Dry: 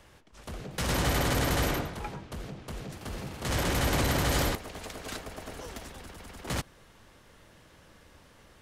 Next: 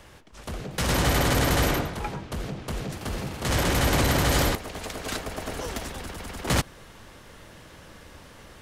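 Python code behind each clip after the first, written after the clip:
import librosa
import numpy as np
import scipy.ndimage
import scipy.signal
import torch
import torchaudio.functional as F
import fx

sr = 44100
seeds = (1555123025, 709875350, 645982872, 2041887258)

y = fx.rider(x, sr, range_db=4, speed_s=2.0)
y = y * 10.0 ** (5.0 / 20.0)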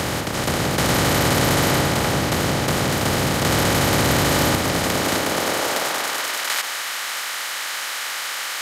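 y = fx.bin_compress(x, sr, power=0.2)
y = fx.filter_sweep_highpass(y, sr, from_hz=110.0, to_hz=1400.0, start_s=4.72, end_s=6.38, q=0.88)
y = y + 10.0 ** (-12.0 / 20.0) * np.pad(y, (int(594 * sr / 1000.0), 0))[:len(y)]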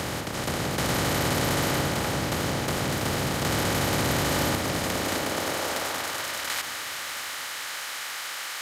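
y = fx.echo_crushed(x, sr, ms=722, feedback_pct=55, bits=6, wet_db=-15)
y = y * 10.0 ** (-7.0 / 20.0)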